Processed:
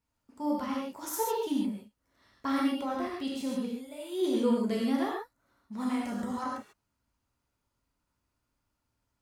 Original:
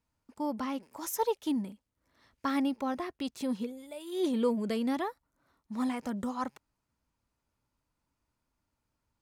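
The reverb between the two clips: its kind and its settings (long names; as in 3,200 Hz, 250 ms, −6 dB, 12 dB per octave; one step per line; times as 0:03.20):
reverb whose tail is shaped and stops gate 170 ms flat, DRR −3.5 dB
level −3.5 dB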